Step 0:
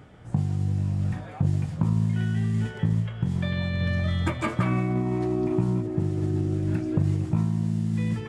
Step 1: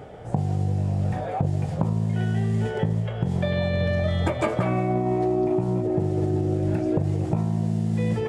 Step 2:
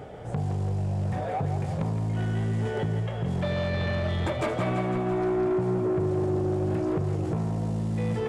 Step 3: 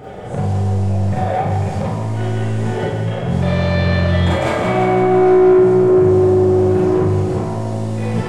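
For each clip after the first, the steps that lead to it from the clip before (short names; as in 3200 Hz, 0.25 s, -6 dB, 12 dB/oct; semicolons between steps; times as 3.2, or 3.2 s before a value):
band shelf 570 Hz +10.5 dB 1.3 oct; compressor, threshold -24 dBFS, peak gain reduction 8 dB; gain +4.5 dB
soft clip -22.5 dBFS, distortion -12 dB; thinning echo 0.168 s, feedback 66%, high-pass 310 Hz, level -8 dB
Schroeder reverb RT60 0.58 s, combs from 31 ms, DRR -6.5 dB; gain +4 dB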